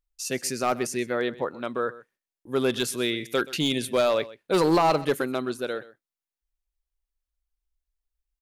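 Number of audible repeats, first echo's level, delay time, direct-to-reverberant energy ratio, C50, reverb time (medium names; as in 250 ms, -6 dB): 1, -18.5 dB, 127 ms, no reverb, no reverb, no reverb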